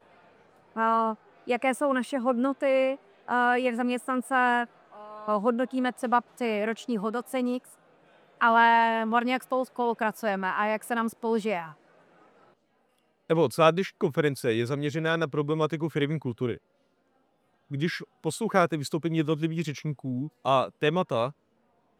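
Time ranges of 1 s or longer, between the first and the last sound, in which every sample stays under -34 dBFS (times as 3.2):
11.67–13.3
16.55–17.71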